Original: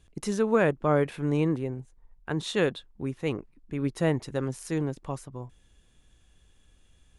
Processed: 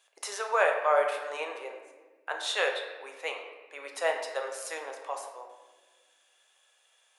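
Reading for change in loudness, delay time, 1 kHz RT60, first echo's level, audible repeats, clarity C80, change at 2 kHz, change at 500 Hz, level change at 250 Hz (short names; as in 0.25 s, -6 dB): -2.0 dB, none, 1.1 s, none, none, 7.5 dB, +4.0 dB, -2.5 dB, -27.5 dB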